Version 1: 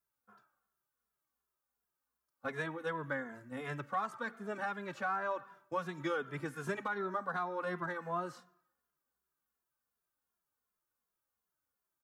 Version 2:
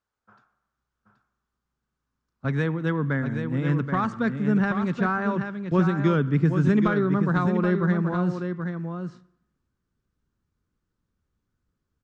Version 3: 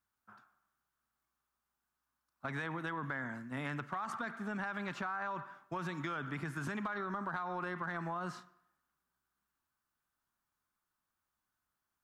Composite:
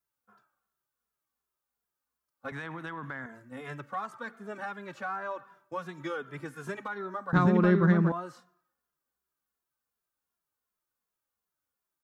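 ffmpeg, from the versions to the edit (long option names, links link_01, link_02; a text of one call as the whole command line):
ffmpeg -i take0.wav -i take1.wav -i take2.wav -filter_complex "[0:a]asplit=3[link_01][link_02][link_03];[link_01]atrim=end=2.522[link_04];[2:a]atrim=start=2.518:end=3.262[link_05];[link_02]atrim=start=3.258:end=7.332[link_06];[1:a]atrim=start=7.328:end=8.122[link_07];[link_03]atrim=start=8.118[link_08];[link_04][link_05]acrossfade=duration=0.004:curve1=hsin:curve2=hsin[link_09];[link_09][link_06]acrossfade=duration=0.004:curve1=hsin:curve2=hsin[link_10];[link_10][link_07]acrossfade=duration=0.004:curve1=hsin:curve2=hsin[link_11];[link_11][link_08]acrossfade=duration=0.004:curve1=hsin:curve2=hsin" out.wav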